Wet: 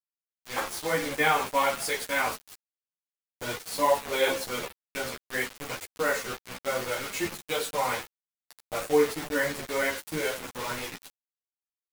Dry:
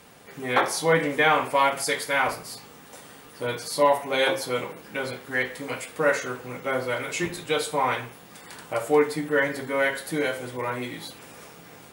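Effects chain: fade-in on the opening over 1.17 s; bit crusher 5-bit; three-phase chorus; trim -1 dB

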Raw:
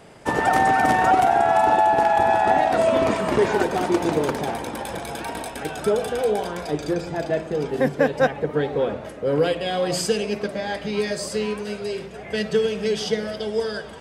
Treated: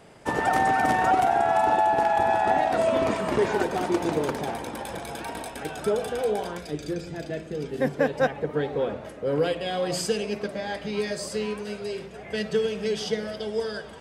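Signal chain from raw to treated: 6.58–7.82 s: peaking EQ 880 Hz -11 dB 1.3 oct; trim -4 dB

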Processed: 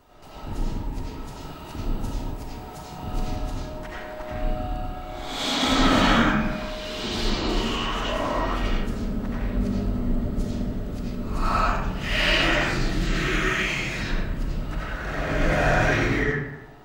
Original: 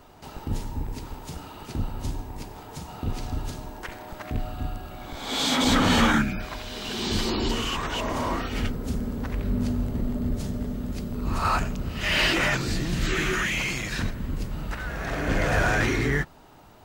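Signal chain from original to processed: 1.40–3.36 s: treble shelf 10 kHz +7 dB; reverberation RT60 0.95 s, pre-delay 50 ms, DRR -7.5 dB; trim -6 dB

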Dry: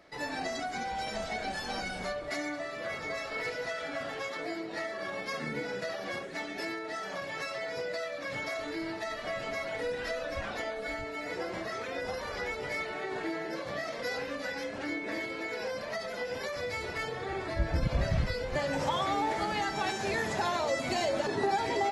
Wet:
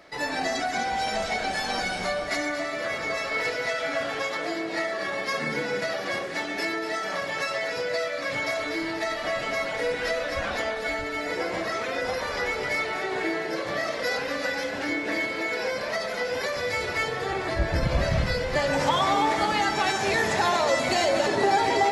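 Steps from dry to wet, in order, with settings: bass shelf 390 Hz -4.5 dB; on a send: two-band feedback delay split 1.7 kHz, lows 136 ms, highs 239 ms, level -9 dB; on the sum: trim +8 dB

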